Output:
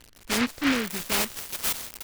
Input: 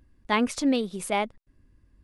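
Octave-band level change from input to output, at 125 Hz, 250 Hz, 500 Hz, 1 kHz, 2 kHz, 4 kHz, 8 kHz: +1.5, -1.5, -5.0, -4.5, +4.0, +6.0, +8.5 dB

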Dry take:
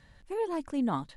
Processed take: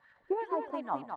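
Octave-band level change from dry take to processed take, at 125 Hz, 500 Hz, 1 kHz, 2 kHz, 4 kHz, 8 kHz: under -15 dB, -0.5 dB, +2.0 dB, -0.5 dB, n/a, under -20 dB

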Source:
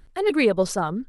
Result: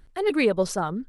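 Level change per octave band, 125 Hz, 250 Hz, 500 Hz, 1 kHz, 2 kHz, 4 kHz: -2.0, -2.0, -2.0, -2.0, -2.0, -2.0 dB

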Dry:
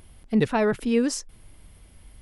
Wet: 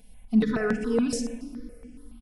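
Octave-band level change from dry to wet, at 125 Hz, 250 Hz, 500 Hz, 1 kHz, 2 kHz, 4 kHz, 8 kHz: -3.0, 0.0, -3.5, -7.5, -2.0, -4.0, -3.5 dB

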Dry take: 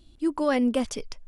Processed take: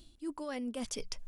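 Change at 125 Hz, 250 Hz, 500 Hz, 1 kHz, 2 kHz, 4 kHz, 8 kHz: n/a, -14.0 dB, -14.5 dB, -14.5 dB, -13.0 dB, -5.5 dB, -3.0 dB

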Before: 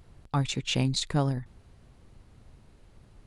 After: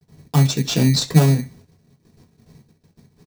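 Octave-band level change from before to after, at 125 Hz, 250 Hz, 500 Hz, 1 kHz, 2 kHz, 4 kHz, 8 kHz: +13.0, +12.0, +9.5, +5.5, +6.5, +7.5, +10.5 dB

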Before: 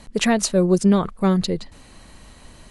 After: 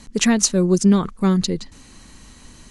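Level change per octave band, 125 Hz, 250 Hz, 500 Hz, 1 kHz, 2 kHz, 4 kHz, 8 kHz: +1.5, +2.0, -1.5, -2.5, 0.0, +2.5, +6.5 dB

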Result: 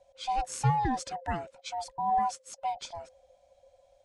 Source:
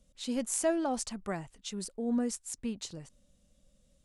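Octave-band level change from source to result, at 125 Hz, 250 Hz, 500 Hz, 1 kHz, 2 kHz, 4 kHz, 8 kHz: +14.0, -7.0, -6.5, +14.0, +2.5, +0.5, -6.0 dB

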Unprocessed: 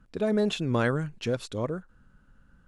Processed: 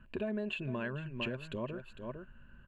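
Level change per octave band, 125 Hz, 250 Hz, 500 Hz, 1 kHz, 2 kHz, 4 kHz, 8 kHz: -10.5 dB, -9.5 dB, -11.0 dB, -11.0 dB, -6.0 dB, -8.0 dB, under -20 dB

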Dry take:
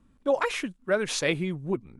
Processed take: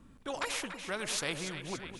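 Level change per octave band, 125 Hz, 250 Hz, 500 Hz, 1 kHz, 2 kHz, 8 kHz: -11.0, -11.0, -13.5, -7.0, -6.5, -1.5 dB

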